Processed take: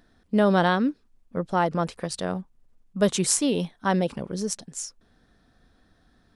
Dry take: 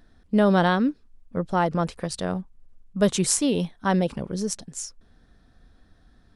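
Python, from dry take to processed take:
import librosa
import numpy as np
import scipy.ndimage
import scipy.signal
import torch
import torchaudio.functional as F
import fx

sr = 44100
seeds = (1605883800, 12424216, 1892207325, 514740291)

y = fx.low_shelf(x, sr, hz=98.0, db=-9.5)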